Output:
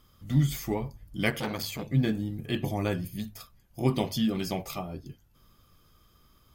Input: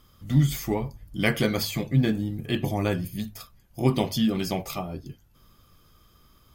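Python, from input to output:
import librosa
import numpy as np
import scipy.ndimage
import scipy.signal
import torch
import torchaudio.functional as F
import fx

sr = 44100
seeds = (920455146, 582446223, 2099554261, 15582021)

y = fx.transformer_sat(x, sr, knee_hz=1500.0, at=(1.3, 1.91))
y = y * librosa.db_to_amplitude(-3.5)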